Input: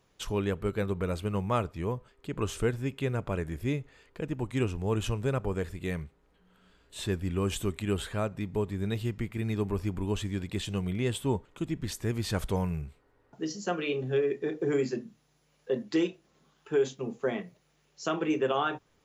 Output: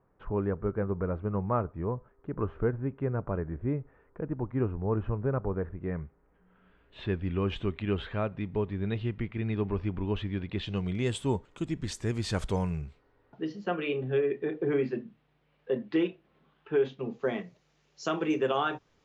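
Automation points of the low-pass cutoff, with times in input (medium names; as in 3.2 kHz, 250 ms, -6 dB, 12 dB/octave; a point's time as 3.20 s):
low-pass 24 dB/octave
5.82 s 1.5 kHz
7.21 s 3.4 kHz
10.53 s 3.4 kHz
11.10 s 8.7 kHz
12.63 s 8.7 kHz
13.53 s 3.2 kHz
16.85 s 3.2 kHz
17.40 s 6.6 kHz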